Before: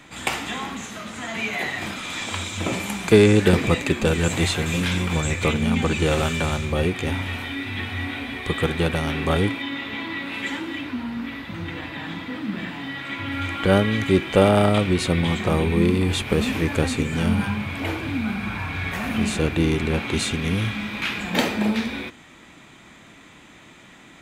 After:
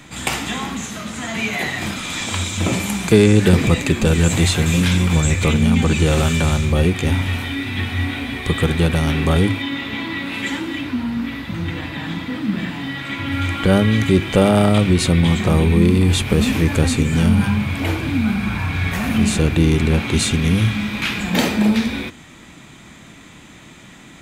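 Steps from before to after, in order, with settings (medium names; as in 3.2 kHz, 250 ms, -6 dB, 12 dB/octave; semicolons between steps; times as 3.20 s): tone controls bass +7 dB, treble +5 dB; hum notches 50/100 Hz; in parallel at +1 dB: peak limiter -11 dBFS, peak gain reduction 10.5 dB; on the sum: trim -3.5 dB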